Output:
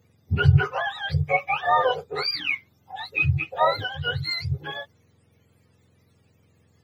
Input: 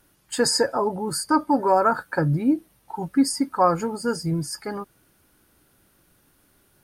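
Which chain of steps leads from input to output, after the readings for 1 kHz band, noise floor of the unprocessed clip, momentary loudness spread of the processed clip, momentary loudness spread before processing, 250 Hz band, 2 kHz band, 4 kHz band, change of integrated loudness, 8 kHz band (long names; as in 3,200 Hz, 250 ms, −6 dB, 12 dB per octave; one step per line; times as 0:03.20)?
−2.0 dB, −62 dBFS, 12 LU, 13 LU, −12.0 dB, +7.5 dB, +1.5 dB, −1.0 dB, below −25 dB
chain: frequency axis turned over on the octave scale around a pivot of 830 Hz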